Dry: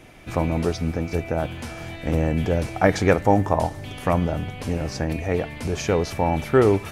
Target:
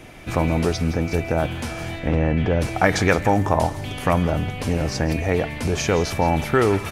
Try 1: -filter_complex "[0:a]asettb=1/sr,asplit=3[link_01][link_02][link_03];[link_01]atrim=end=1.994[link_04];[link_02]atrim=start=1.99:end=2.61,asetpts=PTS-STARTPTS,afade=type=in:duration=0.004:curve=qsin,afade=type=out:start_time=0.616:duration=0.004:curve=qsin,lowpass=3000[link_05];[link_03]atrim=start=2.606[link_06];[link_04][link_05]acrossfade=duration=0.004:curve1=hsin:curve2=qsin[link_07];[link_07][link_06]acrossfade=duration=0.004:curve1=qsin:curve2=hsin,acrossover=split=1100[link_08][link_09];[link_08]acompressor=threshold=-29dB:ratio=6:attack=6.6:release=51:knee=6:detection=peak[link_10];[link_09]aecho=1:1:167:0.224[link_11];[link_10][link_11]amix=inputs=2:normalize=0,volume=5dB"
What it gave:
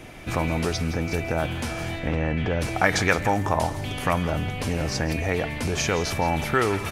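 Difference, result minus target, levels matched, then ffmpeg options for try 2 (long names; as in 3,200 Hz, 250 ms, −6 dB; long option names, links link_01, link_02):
downward compressor: peak gain reduction +6.5 dB
-filter_complex "[0:a]asettb=1/sr,asplit=3[link_01][link_02][link_03];[link_01]atrim=end=1.994[link_04];[link_02]atrim=start=1.99:end=2.61,asetpts=PTS-STARTPTS,afade=type=in:duration=0.004:curve=qsin,afade=type=out:start_time=0.616:duration=0.004:curve=qsin,lowpass=3000[link_05];[link_03]atrim=start=2.606[link_06];[link_04][link_05]acrossfade=duration=0.004:curve1=hsin:curve2=qsin[link_07];[link_07][link_06]acrossfade=duration=0.004:curve1=qsin:curve2=hsin,acrossover=split=1100[link_08][link_09];[link_08]acompressor=threshold=-21.5dB:ratio=6:attack=6.6:release=51:knee=6:detection=peak[link_10];[link_09]aecho=1:1:167:0.224[link_11];[link_10][link_11]amix=inputs=2:normalize=0,volume=5dB"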